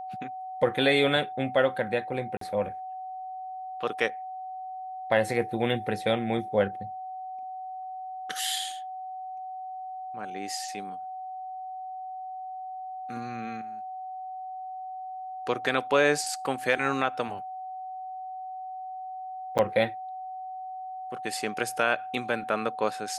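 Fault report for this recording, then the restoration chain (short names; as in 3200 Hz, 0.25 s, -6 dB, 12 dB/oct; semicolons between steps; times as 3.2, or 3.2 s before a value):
tone 750 Hz -35 dBFS
2.37–2.41 gap 43 ms
19.58–19.59 gap 8.2 ms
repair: notch 750 Hz, Q 30; interpolate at 2.37, 43 ms; interpolate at 19.58, 8.2 ms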